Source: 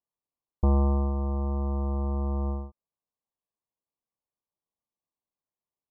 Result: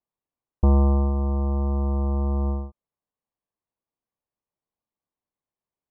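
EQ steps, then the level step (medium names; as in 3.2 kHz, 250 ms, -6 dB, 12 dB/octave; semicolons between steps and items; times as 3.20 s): distance through air 480 m; +5.0 dB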